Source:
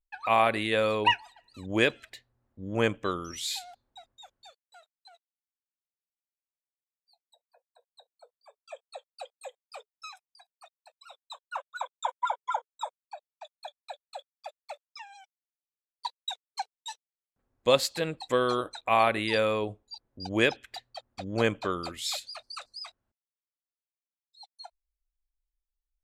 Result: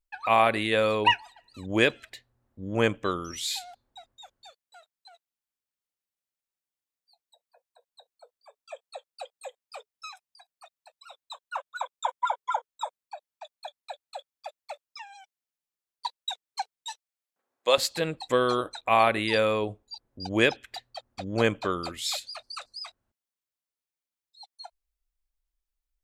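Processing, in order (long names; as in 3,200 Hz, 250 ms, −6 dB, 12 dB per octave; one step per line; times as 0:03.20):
0:16.89–0:17.78: high-pass filter 500 Hz 12 dB per octave
level +2 dB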